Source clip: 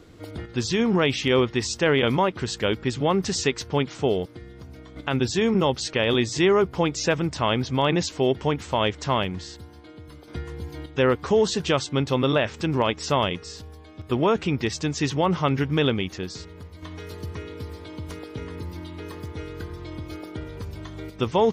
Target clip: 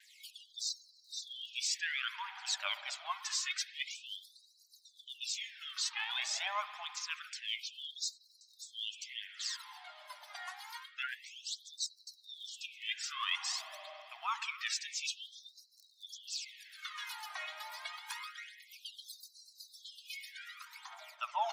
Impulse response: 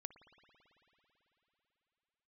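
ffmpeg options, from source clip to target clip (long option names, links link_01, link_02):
-filter_complex "[0:a]aphaser=in_gain=1:out_gain=1:delay=2.8:decay=0.7:speed=0.43:type=triangular,areverse,acompressor=threshold=-29dB:ratio=20,areverse,agate=range=-33dB:threshold=-40dB:ratio=3:detection=peak[link_01];[1:a]atrim=start_sample=2205[link_02];[link_01][link_02]afir=irnorm=-1:irlink=0,afftfilt=real='re*gte(b*sr/1024,580*pow(3900/580,0.5+0.5*sin(2*PI*0.27*pts/sr)))':imag='im*gte(b*sr/1024,580*pow(3900/580,0.5+0.5*sin(2*PI*0.27*pts/sr)))':win_size=1024:overlap=0.75,volume=6dB"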